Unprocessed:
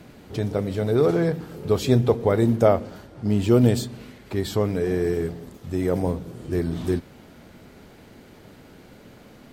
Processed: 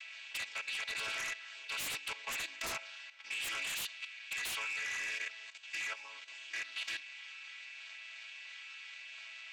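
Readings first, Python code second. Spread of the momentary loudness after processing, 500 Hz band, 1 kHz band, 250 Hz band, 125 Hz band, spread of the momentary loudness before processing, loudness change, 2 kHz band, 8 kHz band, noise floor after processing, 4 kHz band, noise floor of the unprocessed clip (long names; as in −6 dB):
11 LU, −34.5 dB, −15.0 dB, below −40 dB, below −40 dB, 13 LU, −16.5 dB, +3.0 dB, −1.5 dB, −51 dBFS, 0.0 dB, −49 dBFS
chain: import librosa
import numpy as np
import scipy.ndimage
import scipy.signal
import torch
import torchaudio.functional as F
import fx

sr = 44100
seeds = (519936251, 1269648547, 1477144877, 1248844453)

y = fx.chord_vocoder(x, sr, chord='major triad', root=57)
y = fx.ladder_highpass(y, sr, hz=2200.0, resonance_pct=60)
y = fx.fold_sine(y, sr, drive_db=18, ceiling_db=-36.5)
y = fx.level_steps(y, sr, step_db=11)
y = y * librosa.db_to_amplitude(5.5)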